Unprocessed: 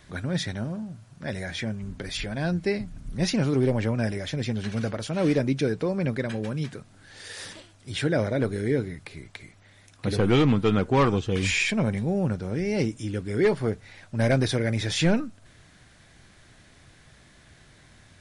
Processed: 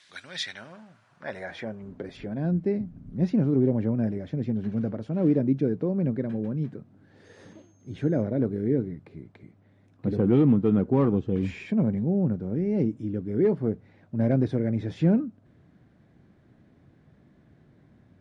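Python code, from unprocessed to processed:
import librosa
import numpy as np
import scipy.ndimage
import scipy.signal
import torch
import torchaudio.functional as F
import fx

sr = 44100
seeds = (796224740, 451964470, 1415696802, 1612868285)

y = fx.dmg_tone(x, sr, hz=6400.0, level_db=-41.0, at=(7.24, 8.21), fade=0.02)
y = fx.filter_sweep_bandpass(y, sr, from_hz=3900.0, to_hz=230.0, start_s=0.19, end_s=2.47, q=1.0)
y = y * 10.0 ** (3.0 / 20.0)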